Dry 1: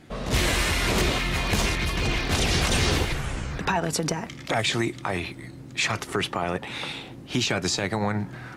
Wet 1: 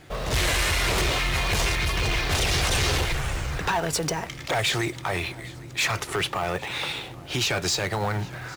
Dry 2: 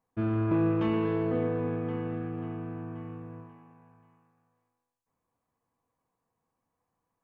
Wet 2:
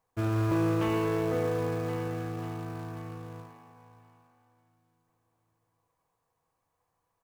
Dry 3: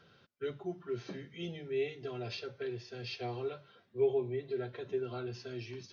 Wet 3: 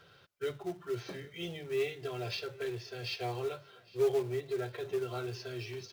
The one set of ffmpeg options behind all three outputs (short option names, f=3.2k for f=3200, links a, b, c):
-filter_complex "[0:a]equalizer=f=230:t=o:w=0.74:g=-12.5,asplit=2[a][b];[b]acrusher=bits=2:mode=log:mix=0:aa=0.000001,volume=-4.5dB[c];[a][c]amix=inputs=2:normalize=0,asoftclip=type=tanh:threshold=-18.5dB,aecho=1:1:807|1614|2421:0.0794|0.0286|0.0103"